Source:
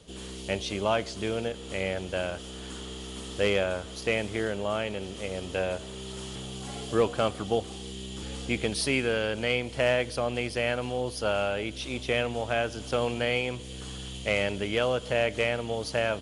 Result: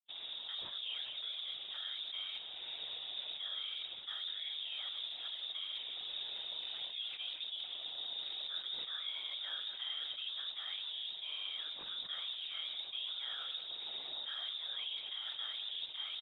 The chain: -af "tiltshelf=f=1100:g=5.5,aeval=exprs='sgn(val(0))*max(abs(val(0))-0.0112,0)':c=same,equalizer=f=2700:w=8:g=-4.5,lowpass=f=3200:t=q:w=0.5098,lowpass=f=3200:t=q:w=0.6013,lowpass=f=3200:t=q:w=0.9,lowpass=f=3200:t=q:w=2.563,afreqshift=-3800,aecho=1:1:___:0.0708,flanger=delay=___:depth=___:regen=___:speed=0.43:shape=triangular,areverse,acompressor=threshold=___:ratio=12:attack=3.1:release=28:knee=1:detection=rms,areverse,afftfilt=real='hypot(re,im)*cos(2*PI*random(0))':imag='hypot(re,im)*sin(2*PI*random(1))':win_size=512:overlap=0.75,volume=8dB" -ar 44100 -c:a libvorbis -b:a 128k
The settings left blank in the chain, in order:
190, 4.6, 2.4, 84, -41dB